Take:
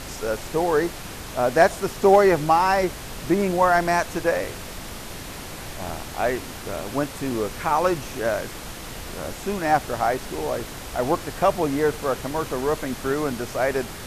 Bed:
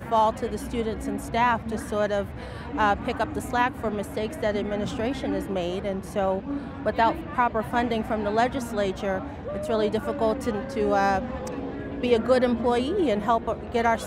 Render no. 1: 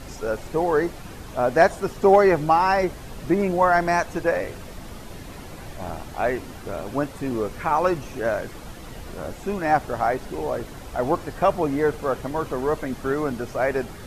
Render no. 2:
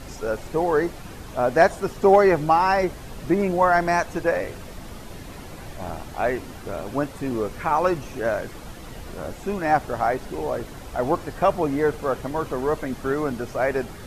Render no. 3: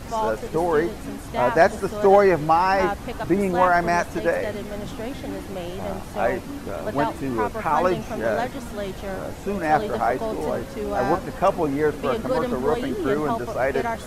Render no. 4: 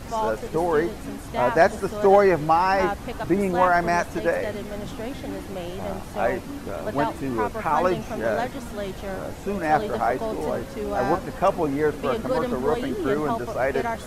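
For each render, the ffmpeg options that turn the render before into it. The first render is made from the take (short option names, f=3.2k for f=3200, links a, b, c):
-af "afftdn=nr=9:nf=-36"
-af anull
-filter_complex "[1:a]volume=-4.5dB[a];[0:a][a]amix=inputs=2:normalize=0"
-af "volume=-1dB"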